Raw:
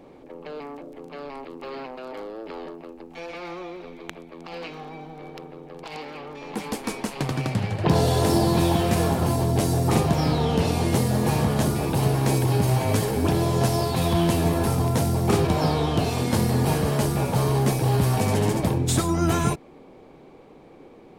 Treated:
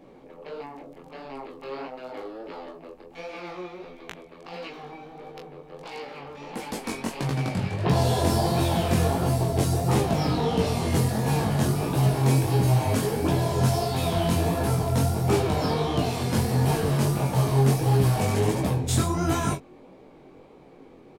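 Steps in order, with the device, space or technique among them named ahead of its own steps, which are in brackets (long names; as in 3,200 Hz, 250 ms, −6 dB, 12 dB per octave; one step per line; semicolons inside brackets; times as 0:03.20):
double-tracked vocal (double-tracking delay 22 ms −5.5 dB; chorus effect 1.5 Hz, delay 15 ms, depth 7.8 ms)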